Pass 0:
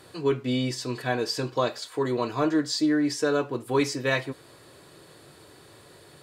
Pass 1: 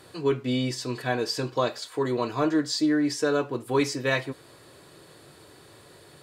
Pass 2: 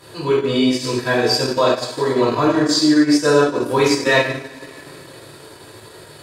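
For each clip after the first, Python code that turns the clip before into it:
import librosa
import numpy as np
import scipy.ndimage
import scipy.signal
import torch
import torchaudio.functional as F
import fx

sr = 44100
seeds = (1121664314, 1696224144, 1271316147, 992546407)

y1 = x
y2 = fx.rev_double_slope(y1, sr, seeds[0], early_s=0.82, late_s=2.9, knee_db=-18, drr_db=-8.0)
y2 = fx.transient(y2, sr, attack_db=-2, sustain_db=-8)
y2 = y2 * librosa.db_to_amplitude(3.0)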